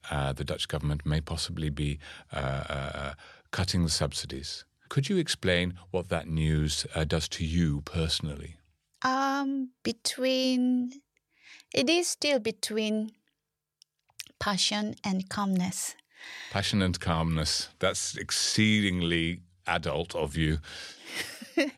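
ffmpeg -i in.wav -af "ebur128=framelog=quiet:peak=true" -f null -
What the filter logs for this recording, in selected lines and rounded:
Integrated loudness:
  I:         -29.3 LUFS
  Threshold: -39.8 LUFS
Loudness range:
  LRA:         4.2 LU
  Threshold: -49.7 LUFS
  LRA low:   -31.8 LUFS
  LRA high:  -27.6 LUFS
True peak:
  Peak:      -11.6 dBFS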